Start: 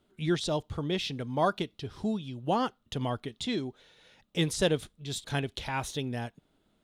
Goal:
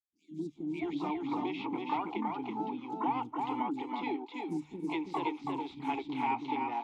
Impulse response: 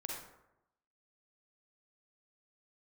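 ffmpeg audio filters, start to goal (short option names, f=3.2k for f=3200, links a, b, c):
-filter_complex "[0:a]adynamicequalizer=threshold=0.00891:dfrequency=530:dqfactor=0.72:tfrequency=530:tqfactor=0.72:attack=5:release=100:ratio=0.375:range=3:mode=boostabove:tftype=bell,asplit=3[a][b][c];[b]asetrate=52444,aresample=44100,atempo=0.840896,volume=-12dB[d];[c]asetrate=88200,aresample=44100,atempo=0.5,volume=-11dB[e];[a][d][e]amix=inputs=3:normalize=0,alimiter=limit=-15.5dB:level=0:latency=1:release=197,asplit=3[f][g][h];[f]bandpass=f=300:t=q:w=8,volume=0dB[i];[g]bandpass=f=870:t=q:w=8,volume=-6dB[j];[h]bandpass=f=2.24k:t=q:w=8,volume=-9dB[k];[i][j][k]amix=inputs=3:normalize=0,bandreject=f=50:t=h:w=6,bandreject=f=100:t=h:w=6,bandreject=f=150:t=h:w=6,acrossover=split=300|5700[l][m][n];[l]adelay=120[o];[m]adelay=550[p];[o][p][n]amix=inputs=3:normalize=0,acrossover=split=190|3000[q][r][s];[r]acompressor=threshold=-43dB:ratio=6[t];[q][t][s]amix=inputs=3:normalize=0,equalizer=f=1.2k:t=o:w=2.6:g=11,asplit=2[u][v];[v]aecho=0:1:327:0.668[w];[u][w]amix=inputs=2:normalize=0,volume=5dB"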